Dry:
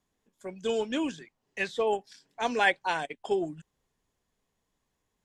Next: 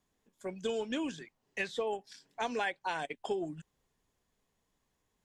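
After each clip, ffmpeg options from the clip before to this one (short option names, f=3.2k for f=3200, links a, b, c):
-af "acompressor=threshold=-31dB:ratio=6"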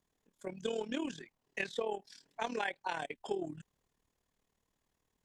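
-af "tremolo=f=38:d=0.75,volume=1dB"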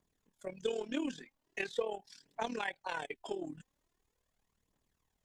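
-af "aphaser=in_gain=1:out_gain=1:delay=4.1:decay=0.46:speed=0.42:type=triangular,volume=-1.5dB"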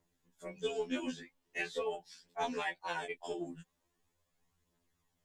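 -af "afftfilt=real='re*2*eq(mod(b,4),0)':imag='im*2*eq(mod(b,4),0)':win_size=2048:overlap=0.75,volume=3.5dB"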